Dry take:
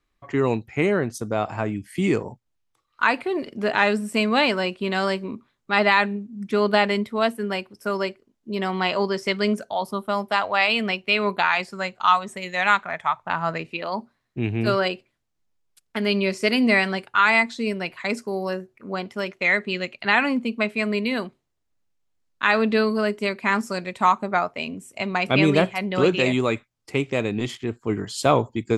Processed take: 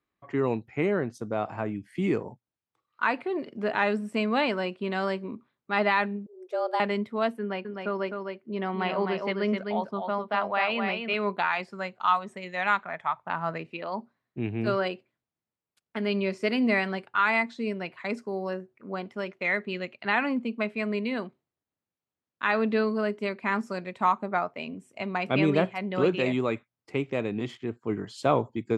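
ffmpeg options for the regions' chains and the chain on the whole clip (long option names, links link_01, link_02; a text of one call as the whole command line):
ffmpeg -i in.wav -filter_complex "[0:a]asettb=1/sr,asplit=3[link_01][link_02][link_03];[link_01]atrim=end=6.264[link_04];[link_02]atrim=start=6.26:end=6.8,asetpts=PTS-STARTPTS,afade=type=in:duration=0.004:curve=qsin,afade=type=out:start_time=0.536:duration=0.004:curve=qsin,highpass=320,equalizer=frequency=2000:width=0.71:gain=-10.5,afreqshift=170[link_05];[link_03]atrim=start=6.796[link_06];[link_04][link_05]acrossfade=duration=0.004:curve1=hsin:curve2=qsin[link_07];[link_07][link_06]acrossfade=duration=0.004:curve1=qsin:curve2=hsin,asettb=1/sr,asplit=3[link_08][link_09][link_10];[link_08]atrim=end=7.394[link_11];[link_09]atrim=start=7.39:end=11.14,asetpts=PTS-STARTPTS,afade=type=in:duration=0.004:curve=qsin,afade=type=out:start_time=3.746:duration=0.004:curve=qsin,lowpass=3700,aecho=1:1:257:0.562,atrim=end_sample=165375[link_12];[link_10]atrim=start=11.136[link_13];[link_11][link_12]acrossfade=duration=0.004:curve1=hsin:curve2=qsin[link_14];[link_14][link_13]acrossfade=duration=0.004:curve1=qsin:curve2=hsin,highpass=110,aemphasis=mode=reproduction:type=75kf,volume=-4.5dB" out.wav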